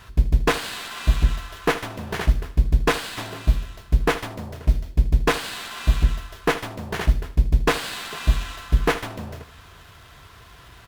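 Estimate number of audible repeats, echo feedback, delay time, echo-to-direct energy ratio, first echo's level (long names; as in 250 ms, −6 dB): 2, 21%, 78 ms, −15.0 dB, −15.0 dB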